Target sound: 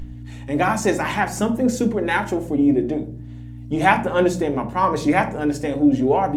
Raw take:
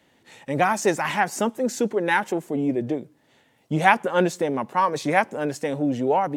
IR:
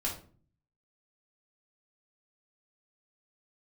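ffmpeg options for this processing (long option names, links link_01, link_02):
-filter_complex "[0:a]aphaser=in_gain=1:out_gain=1:delay=3.9:decay=0.26:speed=0.61:type=sinusoidal,aeval=exprs='val(0)+0.0158*(sin(2*PI*60*n/s)+sin(2*PI*2*60*n/s)/2+sin(2*PI*3*60*n/s)/3+sin(2*PI*4*60*n/s)/4+sin(2*PI*5*60*n/s)/5)':channel_layout=same,acompressor=mode=upward:threshold=-41dB:ratio=2.5,asplit=2[link_01][link_02];[1:a]atrim=start_sample=2205,lowshelf=frequency=290:gain=12[link_03];[link_02][link_03]afir=irnorm=-1:irlink=0,volume=-7.5dB[link_04];[link_01][link_04]amix=inputs=2:normalize=0,volume=-2.5dB"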